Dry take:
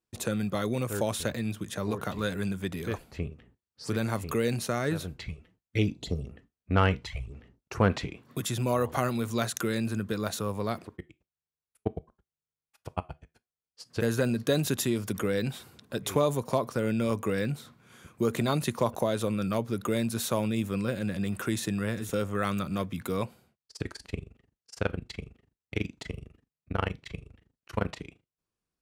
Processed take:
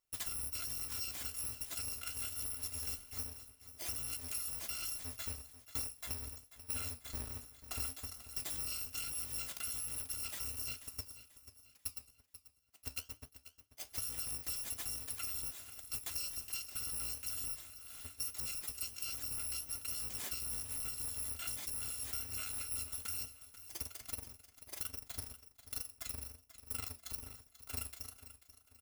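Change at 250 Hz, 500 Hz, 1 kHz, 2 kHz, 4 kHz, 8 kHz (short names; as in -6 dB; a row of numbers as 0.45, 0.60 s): -28.5, -29.5, -20.5, -14.0, -5.0, +1.0 dB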